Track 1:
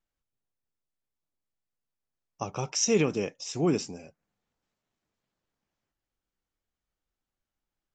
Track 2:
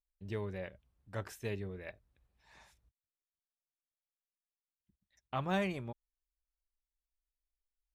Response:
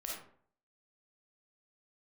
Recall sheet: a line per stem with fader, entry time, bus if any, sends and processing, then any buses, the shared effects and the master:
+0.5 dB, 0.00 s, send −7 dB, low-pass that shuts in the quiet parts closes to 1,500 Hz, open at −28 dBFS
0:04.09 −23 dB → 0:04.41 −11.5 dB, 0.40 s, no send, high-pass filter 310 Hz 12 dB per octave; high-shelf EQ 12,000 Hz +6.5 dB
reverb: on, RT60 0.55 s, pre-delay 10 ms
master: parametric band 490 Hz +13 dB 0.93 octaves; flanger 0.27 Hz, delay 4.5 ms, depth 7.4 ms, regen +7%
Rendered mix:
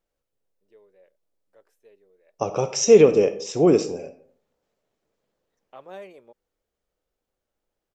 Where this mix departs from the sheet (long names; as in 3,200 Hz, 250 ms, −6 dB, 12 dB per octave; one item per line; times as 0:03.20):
stem 1: missing low-pass that shuts in the quiet parts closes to 1,500 Hz, open at −28 dBFS
master: missing flanger 0.27 Hz, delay 4.5 ms, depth 7.4 ms, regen +7%